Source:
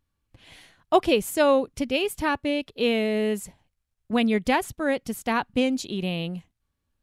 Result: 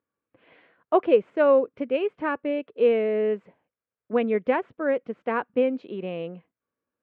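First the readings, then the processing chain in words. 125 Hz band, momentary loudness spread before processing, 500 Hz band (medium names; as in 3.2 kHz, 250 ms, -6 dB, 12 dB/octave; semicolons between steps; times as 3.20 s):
no reading, 8 LU, +3.0 dB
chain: cabinet simulation 290–2100 Hz, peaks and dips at 480 Hz +7 dB, 820 Hz -6 dB, 1.9 kHz -4 dB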